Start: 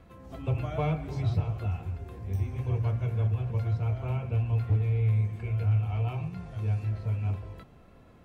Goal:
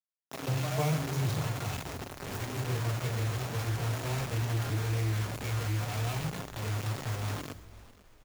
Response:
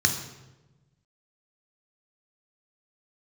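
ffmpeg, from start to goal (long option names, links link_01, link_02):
-filter_complex "[0:a]acrusher=bits=5:mix=0:aa=0.000001,asplit=2[link_01][link_02];[link_02]aemphasis=mode=production:type=50kf[link_03];[1:a]atrim=start_sample=2205,adelay=6[link_04];[link_03][link_04]afir=irnorm=-1:irlink=0,volume=-25.5dB[link_05];[link_01][link_05]amix=inputs=2:normalize=0,asoftclip=type=hard:threshold=-22.5dB,highpass=frequency=110:width=0.5412,highpass=frequency=110:width=1.3066,lowshelf=frequency=150:gain=-3,asplit=5[link_06][link_07][link_08][link_09][link_10];[link_07]adelay=493,afreqshift=-46,volume=-19.5dB[link_11];[link_08]adelay=986,afreqshift=-92,volume=-25.2dB[link_12];[link_09]adelay=1479,afreqshift=-138,volume=-30.9dB[link_13];[link_10]adelay=1972,afreqshift=-184,volume=-36.5dB[link_14];[link_06][link_11][link_12][link_13][link_14]amix=inputs=5:normalize=0"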